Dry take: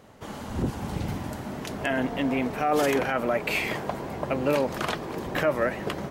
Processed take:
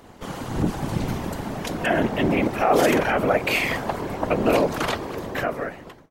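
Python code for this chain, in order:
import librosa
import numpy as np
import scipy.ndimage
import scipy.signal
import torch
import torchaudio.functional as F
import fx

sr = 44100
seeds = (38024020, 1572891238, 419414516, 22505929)

y = fx.fade_out_tail(x, sr, length_s=1.26)
y = fx.whisperise(y, sr, seeds[0])
y = y * 10.0 ** (5.0 / 20.0)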